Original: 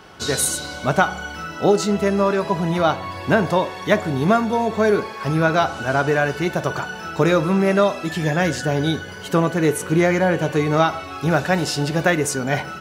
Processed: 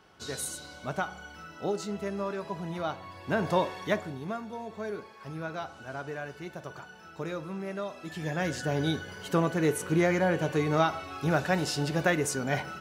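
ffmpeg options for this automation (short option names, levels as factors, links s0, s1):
-af "volume=1.68,afade=t=in:st=3.25:d=0.36:silence=0.375837,afade=t=out:st=3.61:d=0.59:silence=0.237137,afade=t=in:st=7.85:d=0.98:silence=0.281838"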